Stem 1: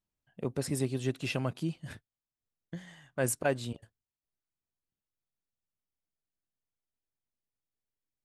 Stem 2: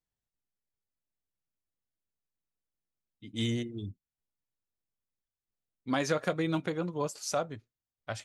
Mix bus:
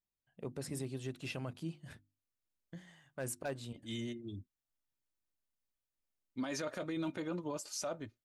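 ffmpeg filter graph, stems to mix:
-filter_complex "[0:a]bandreject=f=50:t=h:w=6,bandreject=f=100:t=h:w=6,bandreject=f=150:t=h:w=6,bandreject=f=200:t=h:w=6,bandreject=f=250:t=h:w=6,bandreject=f=300:t=h:w=6,bandreject=f=350:t=h:w=6,aeval=exprs='0.112*(abs(mod(val(0)/0.112+3,4)-2)-1)':c=same,volume=-7.5dB,asplit=2[a][b];[1:a]aecho=1:1:3.3:0.41,adelay=500,volume=-3dB[c];[b]apad=whole_len=386018[d];[c][d]sidechaincompress=threshold=-44dB:ratio=6:attack=16:release=1160[e];[a][e]amix=inputs=2:normalize=0,alimiter=level_in=6dB:limit=-24dB:level=0:latency=1:release=21,volume=-6dB"

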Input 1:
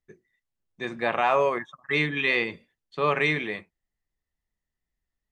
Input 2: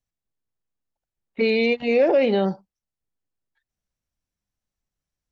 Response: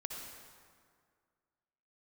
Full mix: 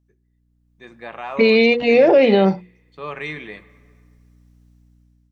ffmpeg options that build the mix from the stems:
-filter_complex "[0:a]aeval=exprs='val(0)+0.00398*(sin(2*PI*60*n/s)+sin(2*PI*2*60*n/s)/2+sin(2*PI*3*60*n/s)/3+sin(2*PI*4*60*n/s)/4+sin(2*PI*5*60*n/s)/5)':c=same,volume=-16dB,asplit=2[a][b];[b]volume=-15.5dB[c];[1:a]bandreject=f=60:t=h:w=6,bandreject=f=120:t=h:w=6,bandreject=f=180:t=h:w=6,bandreject=f=240:t=h:w=6,bandreject=f=300:t=h:w=6,bandreject=f=360:t=h:w=6,bandreject=f=420:t=h:w=6,bandreject=f=480:t=h:w=6,dynaudnorm=f=110:g=11:m=4dB,volume=-1.5dB[d];[2:a]atrim=start_sample=2205[e];[c][e]afir=irnorm=-1:irlink=0[f];[a][d][f]amix=inputs=3:normalize=0,dynaudnorm=f=310:g=5:m=13dB,alimiter=limit=-5dB:level=0:latency=1:release=72"

